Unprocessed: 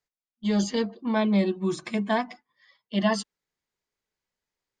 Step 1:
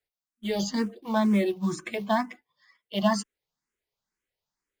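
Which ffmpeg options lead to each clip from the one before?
ffmpeg -i in.wav -filter_complex "[0:a]asplit=2[link_01][link_02];[link_02]acrusher=bits=4:mode=log:mix=0:aa=0.000001,volume=-6dB[link_03];[link_01][link_03]amix=inputs=2:normalize=0,asplit=2[link_04][link_05];[link_05]afreqshift=2.1[link_06];[link_04][link_06]amix=inputs=2:normalize=1,volume=-1.5dB" out.wav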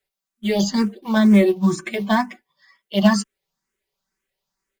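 ffmpeg -i in.wav -af "aeval=exprs='0.266*(cos(1*acos(clip(val(0)/0.266,-1,1)))-cos(1*PI/2))+0.0237*(cos(3*acos(clip(val(0)/0.266,-1,1)))-cos(3*PI/2))':channel_layout=same,aecho=1:1:5.2:0.63,volume=8dB" out.wav

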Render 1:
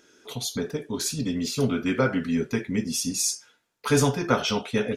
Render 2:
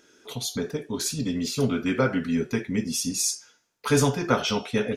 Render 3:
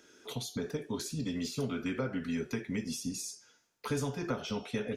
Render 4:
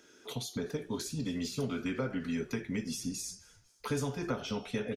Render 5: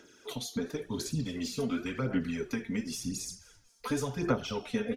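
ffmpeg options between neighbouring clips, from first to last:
ffmpeg -i in.wav -af "bandreject=frequency=364.2:width_type=h:width=4,bandreject=frequency=728.4:width_type=h:width=4,bandreject=frequency=1092.6:width_type=h:width=4,bandreject=frequency=1456.8:width_type=h:width=4,bandreject=frequency=1821:width_type=h:width=4,bandreject=frequency=2185.2:width_type=h:width=4,bandreject=frequency=2549.4:width_type=h:width=4,bandreject=frequency=2913.6:width_type=h:width=4,bandreject=frequency=3277.8:width_type=h:width=4,bandreject=frequency=3642:width_type=h:width=4,bandreject=frequency=4006.2:width_type=h:width=4,bandreject=frequency=4370.4:width_type=h:width=4,bandreject=frequency=4734.6:width_type=h:width=4,bandreject=frequency=5098.8:width_type=h:width=4,bandreject=frequency=5463:width_type=h:width=4,bandreject=frequency=5827.2:width_type=h:width=4,bandreject=frequency=6191.4:width_type=h:width=4,bandreject=frequency=6555.6:width_type=h:width=4,bandreject=frequency=6919.8:width_type=h:width=4,bandreject=frequency=7284:width_type=h:width=4" out.wav
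ffmpeg -i in.wav -filter_complex "[0:a]acrossover=split=84|520[link_01][link_02][link_03];[link_01]acompressor=threshold=-51dB:ratio=4[link_04];[link_02]acompressor=threshold=-32dB:ratio=4[link_05];[link_03]acompressor=threshold=-39dB:ratio=4[link_06];[link_04][link_05][link_06]amix=inputs=3:normalize=0,volume=-2dB" out.wav
ffmpeg -i in.wav -filter_complex "[0:a]asplit=4[link_01][link_02][link_03][link_04];[link_02]adelay=250,afreqshift=-80,volume=-24dB[link_05];[link_03]adelay=500,afreqshift=-160,volume=-29.5dB[link_06];[link_04]adelay=750,afreqshift=-240,volume=-35dB[link_07];[link_01][link_05][link_06][link_07]amix=inputs=4:normalize=0" out.wav
ffmpeg -i in.wav -af "aphaser=in_gain=1:out_gain=1:delay=4.4:decay=0.52:speed=0.93:type=sinusoidal" out.wav

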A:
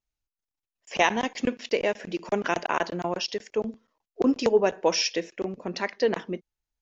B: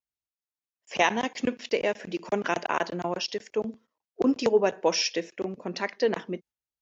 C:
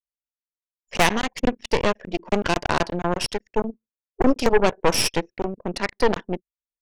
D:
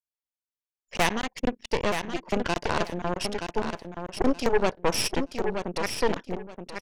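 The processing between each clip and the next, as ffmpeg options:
ffmpeg -i in.wav -af "highpass=83,agate=range=-7dB:threshold=-50dB:ratio=16:detection=peak,volume=-1dB" out.wav
ffmpeg -i in.wav -af "aeval=exprs='0.398*(cos(1*acos(clip(val(0)/0.398,-1,1)))-cos(1*PI/2))+0.0794*(cos(8*acos(clip(val(0)/0.398,-1,1)))-cos(8*PI/2))':channel_layout=same,anlmdn=1,volume=3dB" out.wav
ffmpeg -i in.wav -af "aecho=1:1:925|1850|2775:0.447|0.0938|0.0197,volume=-5.5dB" out.wav

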